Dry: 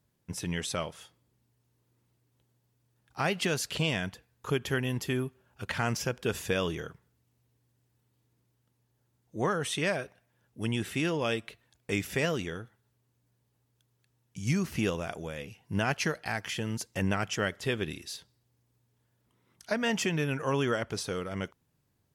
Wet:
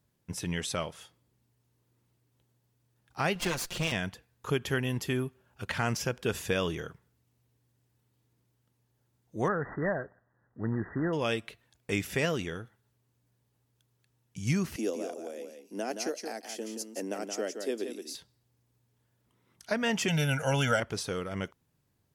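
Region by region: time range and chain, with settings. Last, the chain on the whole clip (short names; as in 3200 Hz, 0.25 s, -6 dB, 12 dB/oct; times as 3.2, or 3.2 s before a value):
3.35–3.92 minimum comb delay 5.7 ms + notch 3000 Hz, Q 27
9.48–11.13 CVSD 32 kbps + brick-wall FIR low-pass 2000 Hz
14.76–18.15 steep high-pass 240 Hz 48 dB/oct + band shelf 1800 Hz -12.5 dB 2.3 oct + echo 0.173 s -7 dB
20.08–20.8 high shelf 3100 Hz +8 dB + notch 1200 Hz, Q 9.7 + comb 1.4 ms, depth 99%
whole clip: dry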